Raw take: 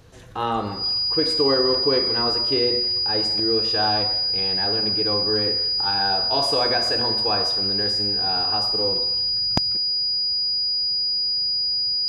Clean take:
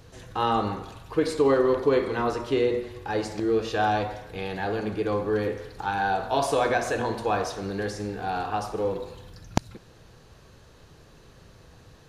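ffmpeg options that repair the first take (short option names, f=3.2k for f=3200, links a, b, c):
-af "bandreject=f=4.9k:w=30"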